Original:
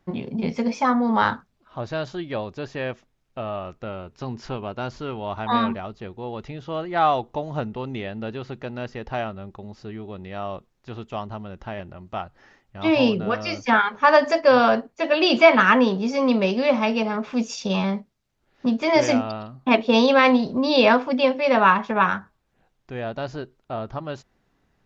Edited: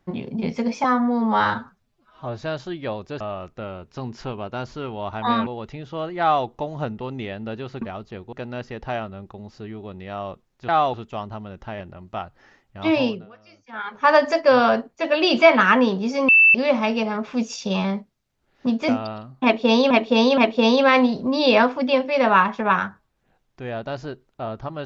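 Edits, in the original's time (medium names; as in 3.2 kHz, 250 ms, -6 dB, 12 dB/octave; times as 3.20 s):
0.84–1.89 s: stretch 1.5×
2.68–3.45 s: delete
5.71–6.22 s: move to 8.57 s
6.96–7.21 s: copy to 10.93 s
12.92–14.08 s: dip -23.5 dB, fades 0.36 s
16.28–16.54 s: bleep 2.65 kHz -9.5 dBFS
18.88–19.13 s: delete
19.68–20.15 s: loop, 3 plays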